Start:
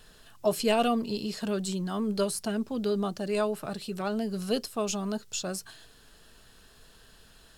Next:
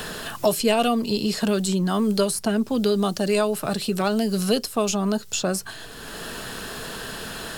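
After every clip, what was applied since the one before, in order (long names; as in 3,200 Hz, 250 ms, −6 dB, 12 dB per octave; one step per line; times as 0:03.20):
high-shelf EQ 7,900 Hz +4.5 dB
multiband upward and downward compressor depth 70%
level +7.5 dB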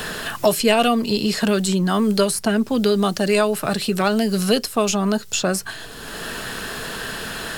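dynamic equaliser 1,900 Hz, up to +5 dB, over −41 dBFS, Q 1.3
level +3 dB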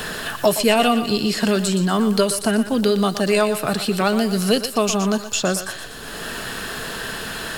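feedback echo with a high-pass in the loop 120 ms, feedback 49%, high-pass 420 Hz, level −10 dB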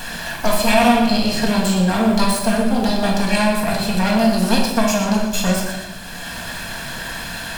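lower of the sound and its delayed copy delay 1.2 ms
rectangular room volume 480 cubic metres, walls mixed, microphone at 1.7 metres
level −2 dB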